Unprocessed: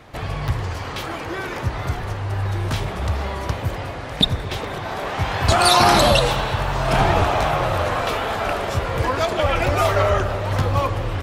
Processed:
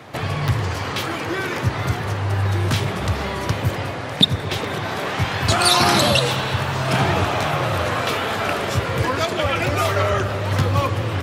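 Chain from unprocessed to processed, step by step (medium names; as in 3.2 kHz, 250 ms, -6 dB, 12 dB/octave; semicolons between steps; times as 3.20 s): high-pass 93 Hz 24 dB/octave; in parallel at +1 dB: gain riding within 4 dB 0.5 s; on the sum: dynamic bell 750 Hz, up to -6 dB, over -25 dBFS, Q 0.97; trim -3.5 dB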